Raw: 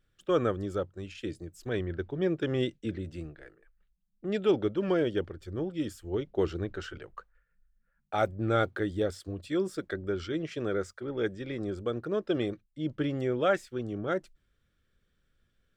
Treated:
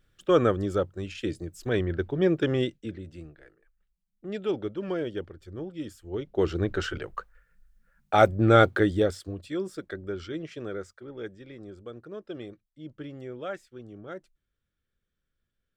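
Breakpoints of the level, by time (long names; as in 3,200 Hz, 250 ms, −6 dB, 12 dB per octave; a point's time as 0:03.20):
0:02.44 +5.5 dB
0:02.97 −3.5 dB
0:06.03 −3.5 dB
0:06.76 +9 dB
0:08.79 +9 dB
0:09.56 −2 dB
0:10.32 −2 dB
0:11.62 −9.5 dB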